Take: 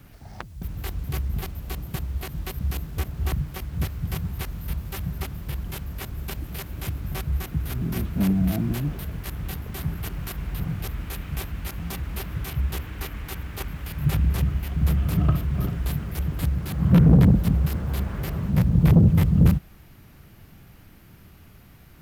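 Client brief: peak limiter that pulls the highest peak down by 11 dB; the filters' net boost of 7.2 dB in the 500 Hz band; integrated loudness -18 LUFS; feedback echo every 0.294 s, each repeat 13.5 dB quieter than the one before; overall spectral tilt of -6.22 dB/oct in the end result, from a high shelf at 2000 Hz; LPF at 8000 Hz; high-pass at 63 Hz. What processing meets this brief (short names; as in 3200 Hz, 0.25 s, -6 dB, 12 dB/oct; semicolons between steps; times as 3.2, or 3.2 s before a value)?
HPF 63 Hz; LPF 8000 Hz; bell 500 Hz +8.5 dB; high shelf 2000 Hz +8 dB; limiter -13.5 dBFS; feedback echo 0.294 s, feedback 21%, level -13.5 dB; gain +9.5 dB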